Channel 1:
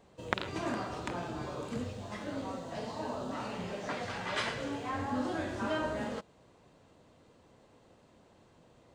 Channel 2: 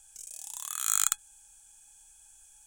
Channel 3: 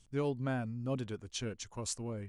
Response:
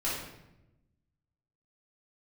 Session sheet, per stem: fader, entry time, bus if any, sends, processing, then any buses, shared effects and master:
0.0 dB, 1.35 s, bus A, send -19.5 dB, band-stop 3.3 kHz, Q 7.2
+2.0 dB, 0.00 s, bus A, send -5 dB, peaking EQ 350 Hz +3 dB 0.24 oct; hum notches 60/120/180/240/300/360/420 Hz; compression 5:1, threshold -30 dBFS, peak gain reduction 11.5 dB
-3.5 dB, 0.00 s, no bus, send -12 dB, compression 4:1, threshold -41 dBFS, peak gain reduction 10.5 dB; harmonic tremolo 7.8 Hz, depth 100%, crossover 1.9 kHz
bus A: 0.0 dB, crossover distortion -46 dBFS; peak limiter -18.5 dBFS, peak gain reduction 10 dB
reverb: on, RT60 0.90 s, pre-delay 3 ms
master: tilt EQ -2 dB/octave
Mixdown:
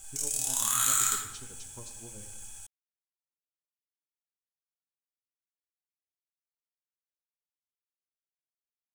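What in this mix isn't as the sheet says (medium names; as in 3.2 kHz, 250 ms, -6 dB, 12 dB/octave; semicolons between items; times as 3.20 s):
stem 1: muted; stem 2 +2.0 dB -> +9.5 dB; master: missing tilt EQ -2 dB/octave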